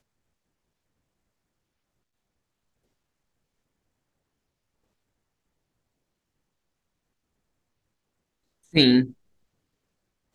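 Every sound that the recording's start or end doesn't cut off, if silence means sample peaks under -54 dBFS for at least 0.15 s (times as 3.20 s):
8.64–9.14 s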